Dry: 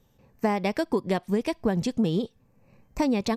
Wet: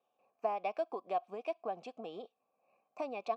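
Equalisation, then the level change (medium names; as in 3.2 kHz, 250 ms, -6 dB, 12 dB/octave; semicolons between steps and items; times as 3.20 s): vowel filter a; high-pass 260 Hz 12 dB/octave; +1.0 dB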